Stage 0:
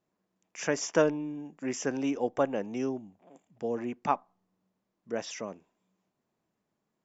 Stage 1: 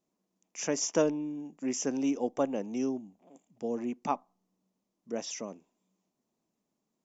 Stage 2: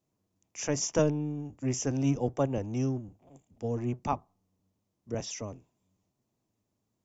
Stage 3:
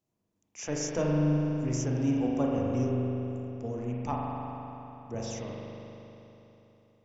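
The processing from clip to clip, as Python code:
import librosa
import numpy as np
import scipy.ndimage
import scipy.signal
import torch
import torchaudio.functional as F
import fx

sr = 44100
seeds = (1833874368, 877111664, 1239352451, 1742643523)

y1 = fx.graphic_eq_15(x, sr, hz=(100, 250, 1600, 6300), db=(-8, 5, -7, 7))
y1 = y1 * librosa.db_to_amplitude(-2.5)
y2 = fx.octave_divider(y1, sr, octaves=1, level_db=1.0)
y3 = 10.0 ** (-13.5 / 20.0) * np.tanh(y2 / 10.0 ** (-13.5 / 20.0))
y3 = fx.rev_spring(y3, sr, rt60_s=3.4, pass_ms=(40,), chirp_ms=25, drr_db=-3.0)
y3 = y3 * librosa.db_to_amplitude(-4.0)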